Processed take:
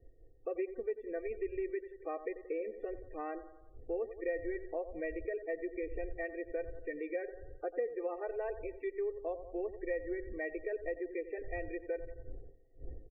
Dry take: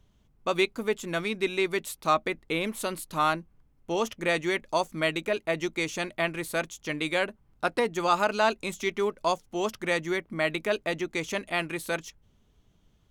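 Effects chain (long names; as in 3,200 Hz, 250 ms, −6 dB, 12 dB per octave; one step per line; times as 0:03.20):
wind on the microphone 89 Hz −39 dBFS
formant resonators in series e
parametric band 100 Hz −12.5 dB 2.9 octaves
comb filter 2.6 ms, depth 98%
on a send: bucket-brigade delay 88 ms, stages 1,024, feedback 47%, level −13.5 dB
on the sum: spectral peaks only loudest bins 32
tilt shelving filter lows +10 dB, about 750 Hz
downward compressor 2.5 to 1, threshold −39 dBFS, peak gain reduction 10 dB
one half of a high-frequency compander encoder only
level +3 dB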